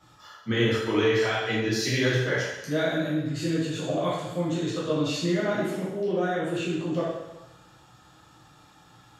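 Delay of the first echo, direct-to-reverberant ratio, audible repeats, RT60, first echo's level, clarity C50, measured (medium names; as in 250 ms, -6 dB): no echo, -8.5 dB, no echo, 1.0 s, no echo, -0.5 dB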